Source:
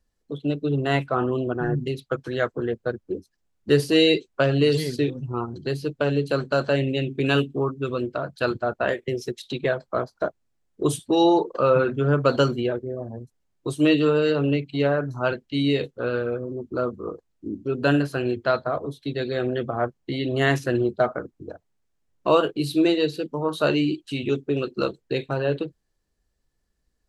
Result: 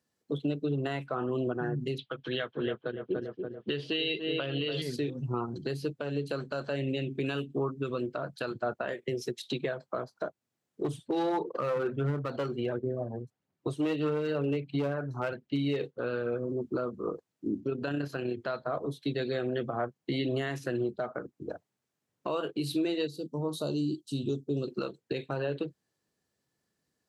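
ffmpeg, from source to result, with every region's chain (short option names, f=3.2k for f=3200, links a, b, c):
-filter_complex "[0:a]asettb=1/sr,asplit=3[a][b][c];[a]atrim=end=1.984[d];[b]atrim=start=1.98:end=4.82,asetpts=PTS-STARTPTS,afade=t=in:d=0.004:c=qsin,afade=t=out:st=2.836:d=0.004:c=qsin,lowpass=f=3.2k:t=q:w=5.6,asplit=2[e][f];[f]adelay=286,lowpass=f=1.3k:p=1,volume=-8.5dB,asplit=2[g][h];[h]adelay=286,lowpass=f=1.3k:p=1,volume=0.54,asplit=2[i][j];[j]adelay=286,lowpass=f=1.3k:p=1,volume=0.54,asplit=2[k][l];[l]adelay=286,lowpass=f=1.3k:p=1,volume=0.54,asplit=2[m][n];[n]adelay=286,lowpass=f=1.3k:p=1,volume=0.54,asplit=2[o][p];[p]adelay=286,lowpass=f=1.3k:p=1,volume=0.54[q];[e][g][i][k][m][o][q]amix=inputs=7:normalize=0,atrim=end_sample=125244[r];[c]atrim=start=4.816[s];[d][r]acrossfade=d=0.004:c1=hsin:c2=qsin[t];[t][s]acrossfade=d=0.004:c1=qsin:c2=hsin,asettb=1/sr,asplit=3[u][v][w];[u]atrim=end=10.844[x];[v]atrim=start=10.84:end=15.98,asetpts=PTS-STARTPTS,afade=t=in:d=0.004:c=qsin,afade=t=out:st=5.136:d=0.004:c=qsin,lowpass=f=2.3k:p=1,aphaser=in_gain=1:out_gain=1:delay=2.7:decay=0.37:speed=1.5:type=triangular,aeval=exprs='clip(val(0),-1,0.15)':c=same[y];[w]atrim=start=15.976[z];[x][y]acrossfade=d=0.004:c1=hsin:c2=qsin[aa];[aa][z]acrossfade=d=0.004:c1=qsin:c2=hsin,asettb=1/sr,asplit=3[ab][ac][ad];[ab]atrim=end=17.604[ae];[ac]atrim=start=17.6:end=18.39,asetpts=PTS-STARTPTS,afade=t=in:d=0.004:c=qsin,afade=t=out:st=0.786:d=0.004:c=qsin,equalizer=f=9.3k:w=2.7:g=-11.5,tremolo=f=32:d=0.4[af];[ad]atrim=start=18.386[ag];[ae][af]acrossfade=d=0.004:c1=hsin:c2=qsin[ah];[ah][ag]acrossfade=d=0.004:c1=qsin:c2=hsin,asettb=1/sr,asplit=3[ai][aj][ak];[ai]atrim=end=23.074[al];[aj]atrim=start=23.07:end=24.68,asetpts=PTS-STARTPTS,afade=t=in:d=0.004:c=qsin,afade=t=out:st=1.606:d=0.004:c=qsin,asuperstop=centerf=2000:order=4:qfactor=0.66,equalizer=f=790:w=0.41:g=-9[am];[ak]atrim=start=24.676[an];[al][am]acrossfade=d=0.004:c1=hsin:c2=qsin[ao];[ao][an]acrossfade=d=0.004:c1=qsin:c2=hsin,highpass=f=110:w=0.5412,highpass=f=110:w=1.3066,acompressor=threshold=-25dB:ratio=2.5,alimiter=limit=-21.5dB:level=0:latency=1:release=373"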